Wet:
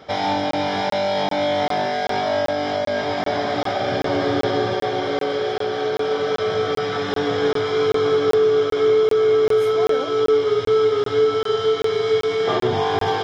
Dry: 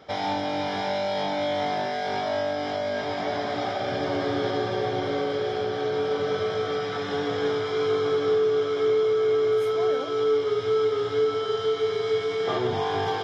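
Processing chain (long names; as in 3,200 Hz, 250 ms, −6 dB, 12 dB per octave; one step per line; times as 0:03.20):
0:04.73–0:06.47: low-shelf EQ 210 Hz −8.5 dB
regular buffer underruns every 0.39 s, samples 1,024, zero, from 0:00.51
level +6 dB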